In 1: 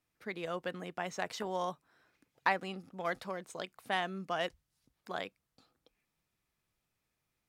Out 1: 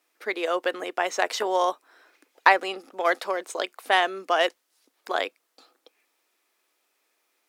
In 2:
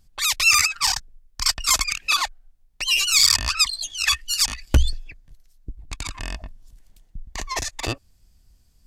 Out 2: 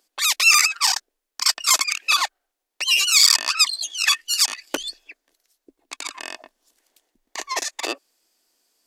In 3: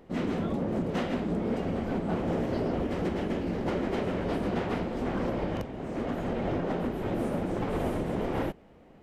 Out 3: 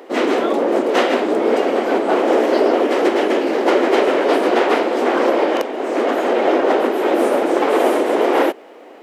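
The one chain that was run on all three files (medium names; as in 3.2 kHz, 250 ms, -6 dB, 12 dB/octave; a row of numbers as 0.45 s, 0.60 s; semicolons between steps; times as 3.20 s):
inverse Chebyshev high-pass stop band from 160 Hz, stop band 40 dB; peak normalisation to -1.5 dBFS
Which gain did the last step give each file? +13.0 dB, +2.0 dB, +18.0 dB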